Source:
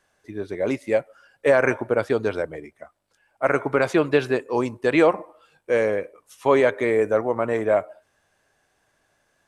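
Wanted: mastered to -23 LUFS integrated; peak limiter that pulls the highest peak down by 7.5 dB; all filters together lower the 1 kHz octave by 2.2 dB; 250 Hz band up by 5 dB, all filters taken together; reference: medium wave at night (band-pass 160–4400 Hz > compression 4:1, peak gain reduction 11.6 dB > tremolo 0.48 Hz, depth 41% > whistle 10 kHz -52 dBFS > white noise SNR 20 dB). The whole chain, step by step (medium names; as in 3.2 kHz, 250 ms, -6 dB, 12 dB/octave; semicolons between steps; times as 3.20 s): peaking EQ 250 Hz +7.5 dB; peaking EQ 1 kHz -3.5 dB; peak limiter -12 dBFS; band-pass 160–4400 Hz; compression 4:1, threshold -30 dBFS; tremolo 0.48 Hz, depth 41%; whistle 10 kHz -52 dBFS; white noise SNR 20 dB; trim +12.5 dB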